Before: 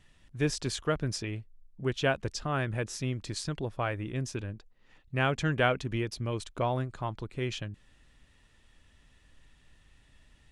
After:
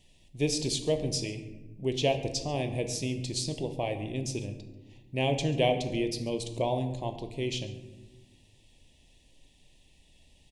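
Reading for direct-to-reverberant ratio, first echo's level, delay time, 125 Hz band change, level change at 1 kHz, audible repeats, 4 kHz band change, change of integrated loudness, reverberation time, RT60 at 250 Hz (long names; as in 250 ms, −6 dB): 7.0 dB, −20.0 dB, 139 ms, −0.5 dB, −1.0 dB, 1, +4.5 dB, +1.5 dB, 1.1 s, 2.0 s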